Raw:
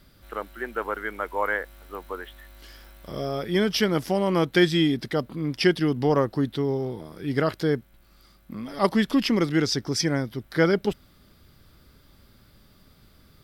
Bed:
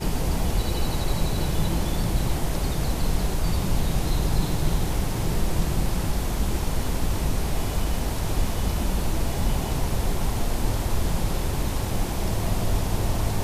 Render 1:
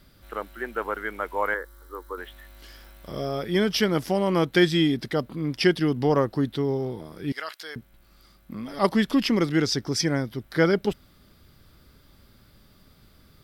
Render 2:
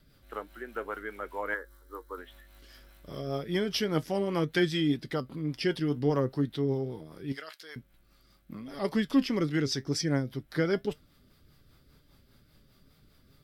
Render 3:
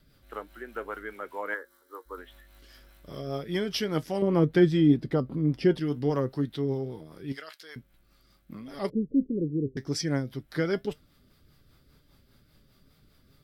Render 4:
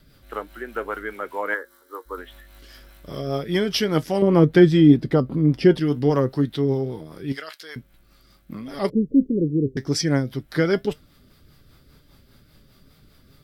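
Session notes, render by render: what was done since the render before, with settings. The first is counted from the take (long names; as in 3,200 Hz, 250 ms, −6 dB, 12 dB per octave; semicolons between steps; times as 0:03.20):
0:01.54–0:02.18: phaser with its sweep stopped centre 690 Hz, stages 6; 0:07.32–0:07.76: Bessel high-pass filter 1,700 Hz
rotating-speaker cabinet horn 5 Hz; flanger 2 Hz, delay 6.3 ms, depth 1.6 ms, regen +67%
0:01.13–0:02.05: high-pass filter 96 Hz → 390 Hz; 0:04.22–0:05.78: tilt shelving filter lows +8 dB, about 1,200 Hz; 0:08.90–0:09.77: Butterworth low-pass 510 Hz 72 dB per octave
level +7.5 dB; brickwall limiter −3 dBFS, peak gain reduction 1 dB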